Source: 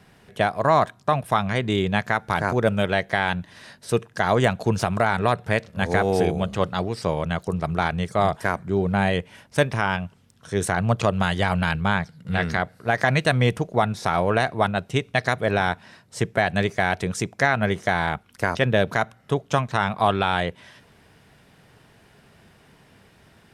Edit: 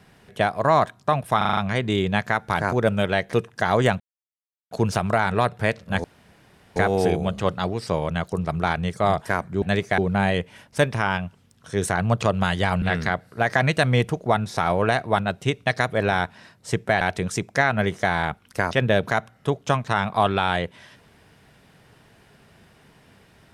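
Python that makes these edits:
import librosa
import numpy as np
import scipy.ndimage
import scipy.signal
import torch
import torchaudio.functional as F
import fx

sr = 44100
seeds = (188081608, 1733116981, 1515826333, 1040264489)

y = fx.edit(x, sr, fx.stutter(start_s=1.37, slice_s=0.04, count=6),
    fx.cut(start_s=3.13, length_s=0.78),
    fx.insert_silence(at_s=4.58, length_s=0.71),
    fx.insert_room_tone(at_s=5.91, length_s=0.72),
    fx.cut(start_s=11.61, length_s=0.69),
    fx.move(start_s=16.49, length_s=0.36, to_s=8.77), tone=tone)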